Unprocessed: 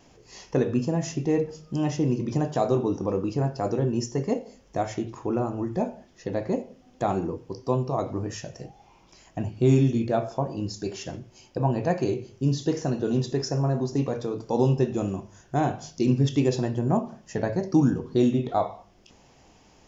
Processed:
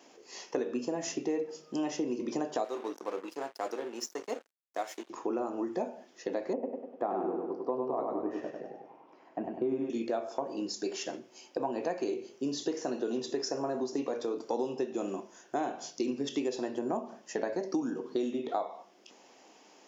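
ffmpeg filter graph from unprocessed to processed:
ffmpeg -i in.wav -filter_complex "[0:a]asettb=1/sr,asplit=3[link_01][link_02][link_03];[link_01]atrim=end=2.644[link_04];[link_02]atrim=start=2.64:end=5.1,asetpts=PTS-STARTPTS,afade=type=in:duration=0.004:curve=qsin,afade=type=out:start_time=2.456:duration=0.004:curve=qsin,highpass=frequency=870:poles=1,aeval=exprs='sgn(val(0))*max(abs(val(0))-0.00631,0)':channel_layout=same[link_05];[link_03]atrim=start=5.096[link_06];[link_04][link_05]acrossfade=duration=0.004:curve1=hsin:curve2=qsin[link_07];[link_07][link_06]acrossfade=duration=0.004:curve1=qsin:curve2=hsin,asettb=1/sr,asplit=3[link_08][link_09][link_10];[link_08]atrim=end=6.534[link_11];[link_09]atrim=start=6.53:end=9.9,asetpts=PTS-STARTPTS,afade=type=in:duration=0.004:curve=qsin,afade=type=out:start_time=3.366:duration=0.004:curve=qsin,lowpass=1300,aecho=1:1:99|198|297|396|495|594:0.631|0.309|0.151|0.0742|0.0364|0.0178,atrim=end_sample=148617[link_12];[link_10]atrim=start=9.896[link_13];[link_11][link_12]acrossfade=duration=0.004:curve1=hsin:curve2=qsin[link_14];[link_14][link_13]acrossfade=duration=0.004:curve1=qsin:curve2=hsin,highpass=frequency=270:width=0.5412,highpass=frequency=270:width=1.3066,acompressor=threshold=-29dB:ratio=5" out.wav

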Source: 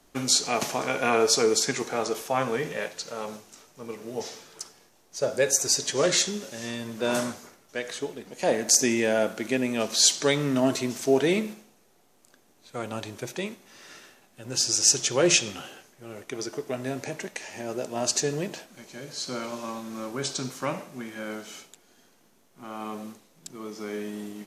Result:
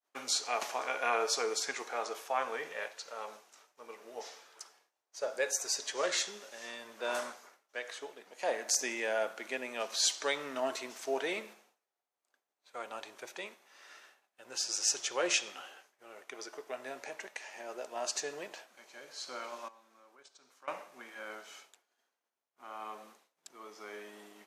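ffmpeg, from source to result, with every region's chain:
ffmpeg -i in.wav -filter_complex "[0:a]asettb=1/sr,asplit=3[link_01][link_02][link_03];[link_01]atrim=end=19.684[link_04];[link_02]atrim=start=19.68:end=20.68,asetpts=PTS-STARTPTS,afade=type=in:duration=0.004:curve=qsin,afade=type=out:start_time=0.996:duration=0.004:curve=qsin,highpass=130,agate=range=-12dB:threshold=-30dB:ratio=16:release=100:detection=peak,acompressor=threshold=-47dB:ratio=4:attack=3.2:release=140:knee=1:detection=peak[link_05];[link_03]atrim=start=20.676[link_06];[link_04][link_05]acrossfade=duration=0.004:curve1=hsin:curve2=qsin[link_07];[link_07][link_06]acrossfade=duration=0.004:curve1=qsin:curve2=hsin,agate=range=-33dB:threshold=-50dB:ratio=3:detection=peak,highpass=730,highshelf=frequency=3100:gain=-9.5,volume=-3dB" out.wav

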